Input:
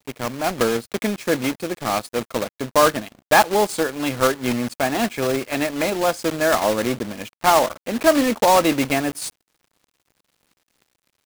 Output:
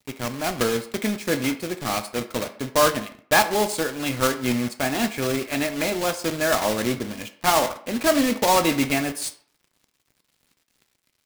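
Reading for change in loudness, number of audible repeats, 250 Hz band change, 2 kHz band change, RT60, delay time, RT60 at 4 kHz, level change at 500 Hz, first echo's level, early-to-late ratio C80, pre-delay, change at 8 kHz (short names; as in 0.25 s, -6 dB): -2.5 dB, none, -2.0 dB, -1.5 dB, 0.55 s, none, 0.35 s, -4.0 dB, none, 16.0 dB, 5 ms, 0.0 dB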